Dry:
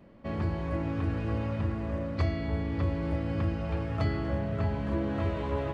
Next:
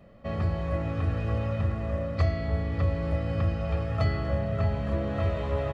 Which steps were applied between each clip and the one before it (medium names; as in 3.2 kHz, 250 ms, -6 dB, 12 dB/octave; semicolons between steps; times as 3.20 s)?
comb 1.6 ms, depth 53%; trim +1 dB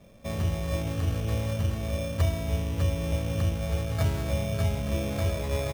treble shelf 2.2 kHz -12 dB; sample-and-hold 15×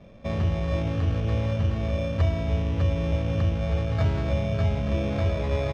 in parallel at -2 dB: peak limiter -25.5 dBFS, peak gain reduction 11 dB; on the sum: distance through air 180 m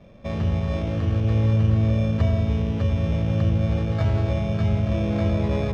filtered feedback delay 91 ms, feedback 84%, low-pass 1 kHz, level -6.5 dB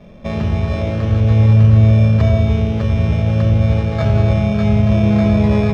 simulated room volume 2100 m³, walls furnished, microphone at 1.4 m; trim +6.5 dB